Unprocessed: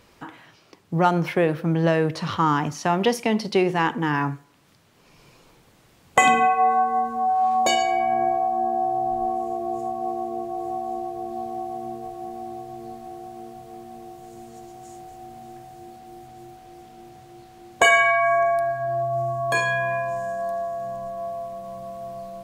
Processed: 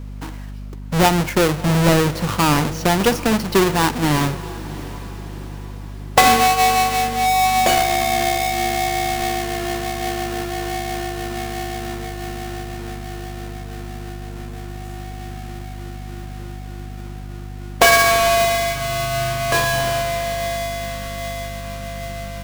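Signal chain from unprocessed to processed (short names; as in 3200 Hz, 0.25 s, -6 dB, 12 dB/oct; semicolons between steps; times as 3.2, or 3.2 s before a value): half-waves squared off; hum 50 Hz, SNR 11 dB; diffused feedback echo 0.707 s, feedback 50%, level -16 dB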